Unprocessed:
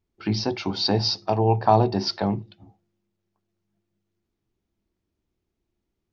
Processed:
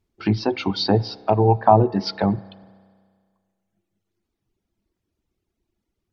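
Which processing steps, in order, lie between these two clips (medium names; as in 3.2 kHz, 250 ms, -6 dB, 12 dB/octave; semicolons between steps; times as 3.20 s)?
reverb removal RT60 1.5 s; low-pass that closes with the level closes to 1.3 kHz, closed at -18 dBFS; spring tank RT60 1.9 s, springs 31 ms, chirp 45 ms, DRR 19 dB; trim +5 dB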